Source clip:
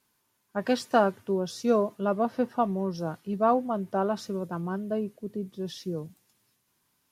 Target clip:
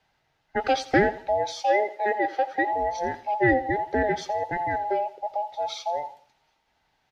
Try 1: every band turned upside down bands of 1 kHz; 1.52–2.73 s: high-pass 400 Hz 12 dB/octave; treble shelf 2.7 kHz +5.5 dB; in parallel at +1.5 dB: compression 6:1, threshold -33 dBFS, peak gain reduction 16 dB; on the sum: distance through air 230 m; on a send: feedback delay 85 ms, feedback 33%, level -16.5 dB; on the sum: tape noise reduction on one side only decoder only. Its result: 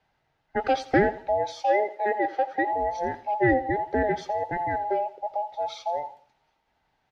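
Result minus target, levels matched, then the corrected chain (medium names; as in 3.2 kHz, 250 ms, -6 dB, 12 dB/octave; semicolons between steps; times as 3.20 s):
4 kHz band -4.5 dB
every band turned upside down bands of 1 kHz; 1.52–2.73 s: high-pass 400 Hz 12 dB/octave; treble shelf 2.7 kHz +14 dB; in parallel at +1.5 dB: compression 6:1, threshold -33 dBFS, peak gain reduction 17 dB; on the sum: distance through air 230 m; on a send: feedback delay 85 ms, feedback 33%, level -16.5 dB; on the sum: tape noise reduction on one side only decoder only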